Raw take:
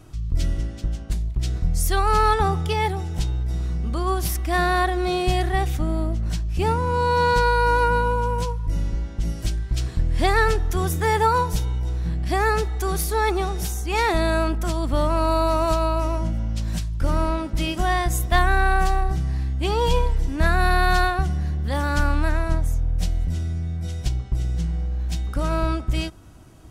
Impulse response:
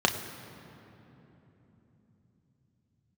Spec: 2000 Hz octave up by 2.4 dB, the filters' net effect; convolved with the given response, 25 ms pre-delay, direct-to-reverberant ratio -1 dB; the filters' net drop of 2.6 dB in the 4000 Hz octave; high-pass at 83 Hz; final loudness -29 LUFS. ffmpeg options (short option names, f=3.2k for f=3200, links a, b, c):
-filter_complex "[0:a]highpass=83,equalizer=f=2k:t=o:g=4,equalizer=f=4k:t=o:g=-4.5,asplit=2[a][b];[1:a]atrim=start_sample=2205,adelay=25[c];[b][c]afir=irnorm=-1:irlink=0,volume=-12.5dB[d];[a][d]amix=inputs=2:normalize=0,volume=-9dB"